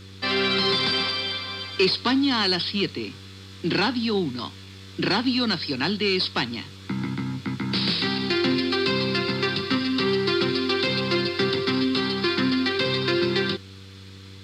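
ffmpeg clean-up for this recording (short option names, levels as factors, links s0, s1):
-af "bandreject=f=96.2:t=h:w=4,bandreject=f=192.4:t=h:w=4,bandreject=f=288.6:t=h:w=4,bandreject=f=384.8:t=h:w=4,bandreject=f=481:t=h:w=4"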